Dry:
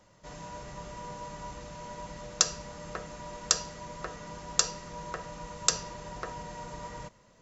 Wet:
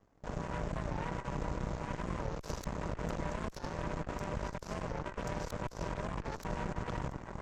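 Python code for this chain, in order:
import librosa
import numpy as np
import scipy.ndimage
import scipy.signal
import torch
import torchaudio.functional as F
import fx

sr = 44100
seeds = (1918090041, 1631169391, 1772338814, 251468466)

p1 = fx.reverse_delay(x, sr, ms=505, wet_db=-7)
p2 = fx.level_steps(p1, sr, step_db=13)
p3 = p1 + F.gain(torch.from_numpy(p2), -2.5).numpy()
p4 = fx.tilt_shelf(p3, sr, db=8.0, hz=1200.0)
p5 = p4 + fx.echo_stepped(p4, sr, ms=136, hz=160.0, octaves=1.4, feedback_pct=70, wet_db=-12, dry=0)
p6 = fx.over_compress(p5, sr, threshold_db=-34.0, ratio=-0.5)
p7 = fx.cheby_harmonics(p6, sr, harmonics=(3, 6, 7), levels_db=(-27, -14, -19), full_scale_db=-22.0)
p8 = fx.low_shelf(p7, sr, hz=190.0, db=5.0)
p9 = fx.record_warp(p8, sr, rpm=45.0, depth_cents=160.0)
y = F.gain(torch.from_numpy(p9), -5.0).numpy()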